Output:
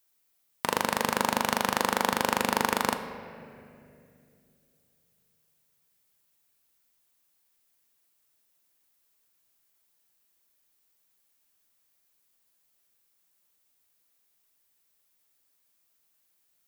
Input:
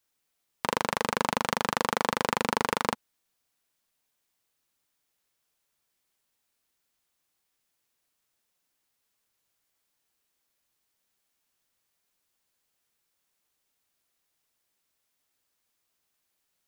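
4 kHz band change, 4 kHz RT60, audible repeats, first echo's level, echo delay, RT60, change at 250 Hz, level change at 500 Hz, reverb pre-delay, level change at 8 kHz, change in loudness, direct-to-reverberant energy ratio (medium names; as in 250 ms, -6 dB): +1.5 dB, 1.7 s, no echo, no echo, no echo, 2.6 s, +2.0 dB, +0.5 dB, 3 ms, +3.5 dB, +1.0 dB, 7.5 dB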